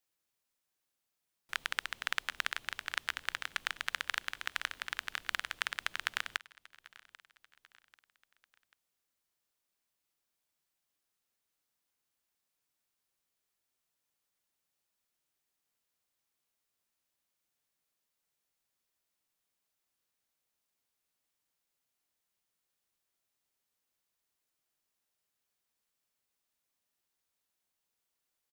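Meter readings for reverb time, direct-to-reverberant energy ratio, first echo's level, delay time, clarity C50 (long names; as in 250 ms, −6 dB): no reverb audible, no reverb audible, −21.5 dB, 790 ms, no reverb audible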